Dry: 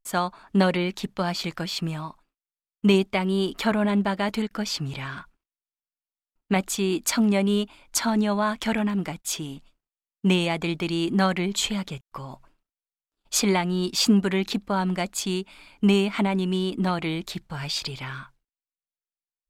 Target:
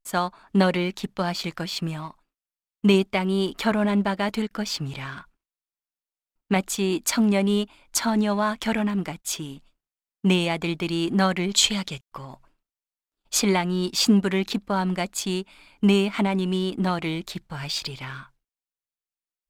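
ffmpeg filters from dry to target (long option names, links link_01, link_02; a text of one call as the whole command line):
ffmpeg -i in.wav -filter_complex "[0:a]asplit=2[link_01][link_02];[link_02]aeval=exprs='sgn(val(0))*max(abs(val(0))-0.0168,0)':channel_layout=same,volume=-6dB[link_03];[link_01][link_03]amix=inputs=2:normalize=0,asettb=1/sr,asplit=3[link_04][link_05][link_06];[link_04]atrim=end=11.494[link_07];[link_05]atrim=start=11.49:end=12.04,asetpts=PTS-STARTPTS,afade=type=in:duration=0.004:curve=qsin,afade=type=out:start_time=0.546:duration=0.004:curve=qsin,equalizer=frequency=5000:width=0.53:gain=8[link_08];[link_06]atrim=start=12.036[link_09];[link_07][link_08]acrossfade=duration=0.004:curve1=hsin:curve2=qsin[link_10];[link_10][link_09]acrossfade=duration=0.004:curve1=qsin:curve2=hsin,volume=-2.5dB" out.wav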